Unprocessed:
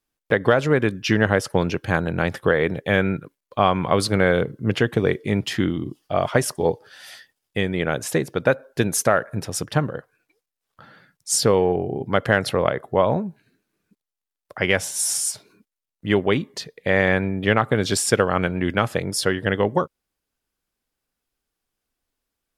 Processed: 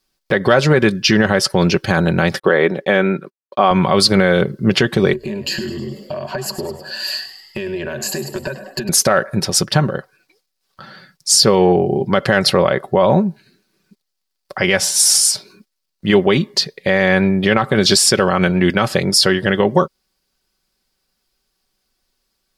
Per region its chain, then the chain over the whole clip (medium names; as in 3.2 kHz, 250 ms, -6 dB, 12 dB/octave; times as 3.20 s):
2.39–3.71 s: high-pass 250 Hz + gate -48 dBFS, range -37 dB + treble shelf 3.1 kHz -10 dB
5.13–8.89 s: rippled EQ curve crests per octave 1.4, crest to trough 17 dB + compression 16:1, threshold -30 dBFS + frequency-shifting echo 103 ms, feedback 55%, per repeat +67 Hz, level -12 dB
whole clip: peaking EQ 4.7 kHz +10 dB 0.58 oct; comb 5.3 ms, depth 48%; loudness maximiser +9 dB; trim -1 dB